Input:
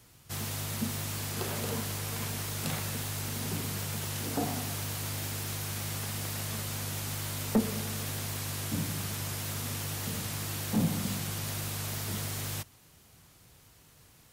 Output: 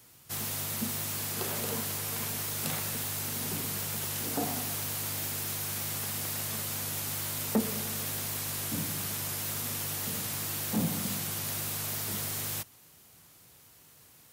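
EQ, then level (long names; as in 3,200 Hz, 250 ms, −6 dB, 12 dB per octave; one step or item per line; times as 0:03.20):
high-pass filter 160 Hz 6 dB per octave
high-shelf EQ 11,000 Hz +9 dB
0.0 dB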